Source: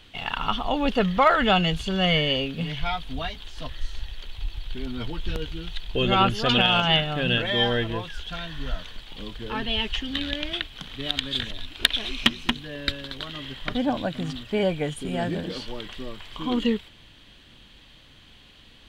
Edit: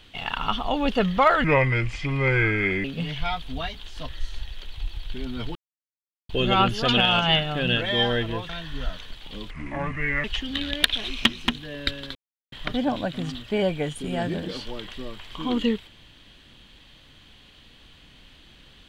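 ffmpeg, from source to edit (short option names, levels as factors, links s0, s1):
-filter_complex "[0:a]asplit=11[s0][s1][s2][s3][s4][s5][s6][s7][s8][s9][s10];[s0]atrim=end=1.444[s11];[s1]atrim=start=1.44:end=2.45,asetpts=PTS-STARTPTS,asetrate=31752,aresample=44100,atrim=end_sample=61862,asetpts=PTS-STARTPTS[s12];[s2]atrim=start=2.446:end=5.16,asetpts=PTS-STARTPTS,afade=t=out:st=2.71:d=0.004:c=hsin[s13];[s3]atrim=start=5.16:end=5.9,asetpts=PTS-STARTPTS,volume=0[s14];[s4]atrim=start=5.9:end=8.102,asetpts=PTS-STARTPTS,afade=t=in:d=0.004:c=hsin[s15];[s5]atrim=start=8.348:end=9.364[s16];[s6]atrim=start=9.36:end=9.84,asetpts=PTS-STARTPTS,asetrate=28665,aresample=44100,atrim=end_sample=32566,asetpts=PTS-STARTPTS[s17];[s7]atrim=start=9.836:end=10.432[s18];[s8]atrim=start=11.838:end=13.16,asetpts=PTS-STARTPTS,afade=t=out:st=1.318:d=0.004:c=hsin[s19];[s9]atrim=start=13.16:end=13.53,asetpts=PTS-STARTPTS,volume=0[s20];[s10]atrim=start=13.53,asetpts=PTS-STARTPTS,afade=t=in:d=0.004:c=hsin[s21];[s11][s12]acrossfade=d=0.004:c1=hsin:c2=hsin[s22];[s13][s14][s15]concat=n=3:v=0:a=1[s23];[s22][s23]acrossfade=d=0.004:c1=hsin:c2=hsin[s24];[s24][s16]acrossfade=d=0.004:c1=hsin:c2=hsin[s25];[s25][s17]acrossfade=d=0.004:c1=hsin:c2=hsin[s26];[s26][s18]acrossfade=d=0.004:c1=hsin:c2=hsin[s27];[s19][s20][s21]concat=n=3:v=0:a=1[s28];[s27][s28]acrossfade=d=0.004:c1=hsin:c2=hsin"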